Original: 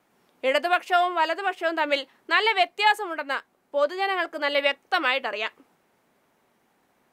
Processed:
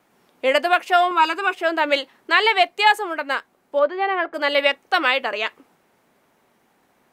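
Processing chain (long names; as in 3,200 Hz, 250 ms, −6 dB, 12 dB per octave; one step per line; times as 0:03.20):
0:01.11–0:01.54: comb filter 0.8 ms, depth 79%
0:03.79–0:04.34: low-pass filter 2,100 Hz 12 dB per octave
level +4.5 dB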